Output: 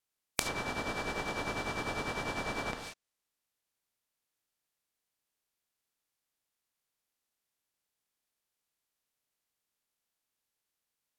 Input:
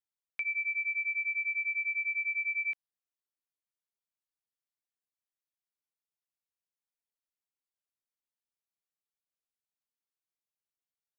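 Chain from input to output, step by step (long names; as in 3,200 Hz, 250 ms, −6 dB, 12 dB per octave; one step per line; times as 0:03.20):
compressing power law on the bin magnitudes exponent 0.18
on a send at −4.5 dB: convolution reverb, pre-delay 3 ms
on the sum: dynamic equaliser 2,400 Hz, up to −8 dB, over −49 dBFS, Q 0.73
treble cut that deepens with the level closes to 2,200 Hz, closed at −31 dBFS
level +8 dB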